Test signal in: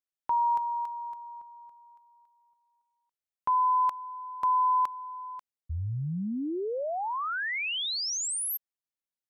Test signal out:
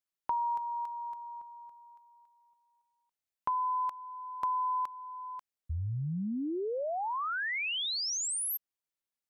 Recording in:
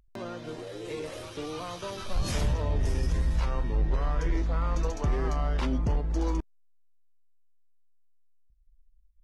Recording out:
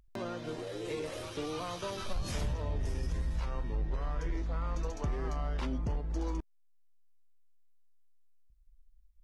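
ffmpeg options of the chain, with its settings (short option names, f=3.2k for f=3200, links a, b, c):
-af "acompressor=threshold=-30dB:ratio=6:attack=42:release=917:knee=6"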